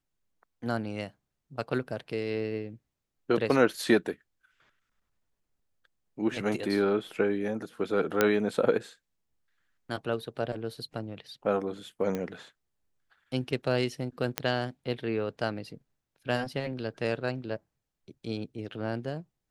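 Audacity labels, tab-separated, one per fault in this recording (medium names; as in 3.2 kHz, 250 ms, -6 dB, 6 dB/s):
8.210000	8.210000	pop -8 dBFS
12.150000	12.150000	pop -19 dBFS
14.380000	14.380000	pop -9 dBFS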